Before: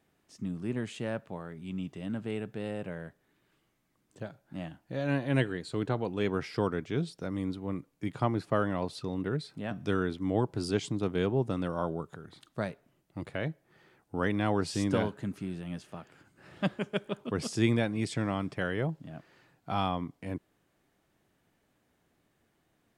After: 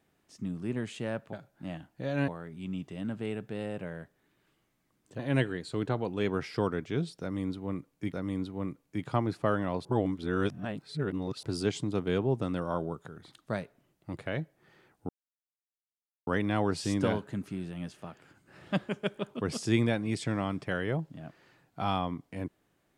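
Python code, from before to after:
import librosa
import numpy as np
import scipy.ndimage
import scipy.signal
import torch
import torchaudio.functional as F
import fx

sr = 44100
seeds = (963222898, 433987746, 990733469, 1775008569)

y = fx.edit(x, sr, fx.move(start_s=4.24, length_s=0.95, to_s=1.33),
    fx.repeat(start_s=7.21, length_s=0.92, count=2),
    fx.reverse_span(start_s=8.93, length_s=1.58),
    fx.insert_silence(at_s=14.17, length_s=1.18), tone=tone)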